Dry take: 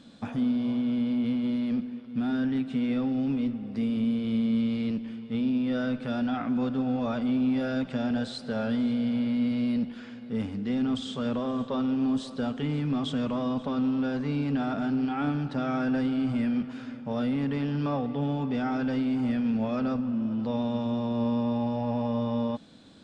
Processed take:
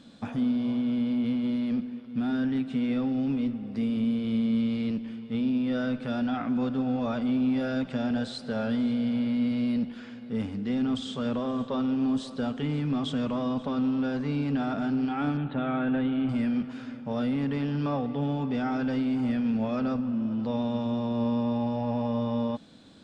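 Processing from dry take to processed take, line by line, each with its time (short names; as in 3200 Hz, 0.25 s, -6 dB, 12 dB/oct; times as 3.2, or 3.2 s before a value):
15.37–16.29 steep low-pass 3900 Hz 72 dB/oct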